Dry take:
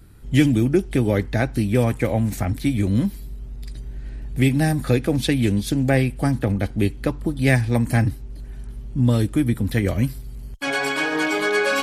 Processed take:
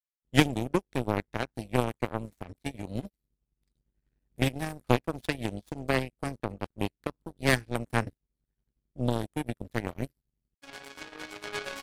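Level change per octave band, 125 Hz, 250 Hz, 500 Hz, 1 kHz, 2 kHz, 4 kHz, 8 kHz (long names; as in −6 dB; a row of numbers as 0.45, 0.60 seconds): −14.0, −12.0, −9.0, −5.5, −9.5, −6.5, −9.0 decibels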